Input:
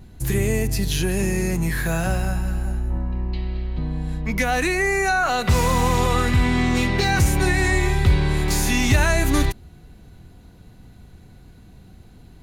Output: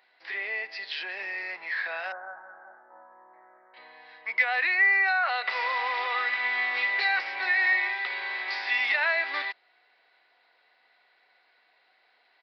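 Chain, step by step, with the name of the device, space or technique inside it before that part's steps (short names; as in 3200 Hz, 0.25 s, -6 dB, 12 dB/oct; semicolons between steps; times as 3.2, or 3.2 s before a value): 2.12–3.74 elliptic low-pass 1500 Hz, stop band 50 dB; musical greeting card (downsampling 11025 Hz; HPF 630 Hz 24 dB/oct; bell 2000 Hz +10.5 dB 0.56 oct); gain -7 dB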